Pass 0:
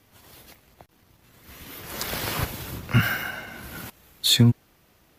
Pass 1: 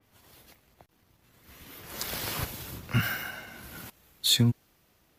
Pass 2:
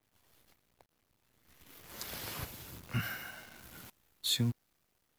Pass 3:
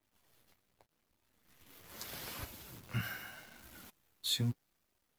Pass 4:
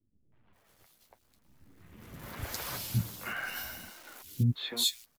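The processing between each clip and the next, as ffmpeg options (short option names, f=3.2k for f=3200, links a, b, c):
-af "adynamicequalizer=threshold=0.00891:dfrequency=3100:dqfactor=0.7:tfrequency=3100:tqfactor=0.7:attack=5:release=100:ratio=0.375:range=2:mode=boostabove:tftype=highshelf,volume=-6.5dB"
-af "acrusher=bits=8:dc=4:mix=0:aa=0.000001,volume=-8.5dB"
-af "flanger=delay=3.1:depth=7.8:regen=-36:speed=0.81:shape=sinusoidal,volume=1dB"
-filter_complex "[0:a]acrossover=split=340|2800[a][b][c];[b]adelay=320[d];[c]adelay=530[e];[a][d][e]amix=inputs=3:normalize=0,volume=8dB"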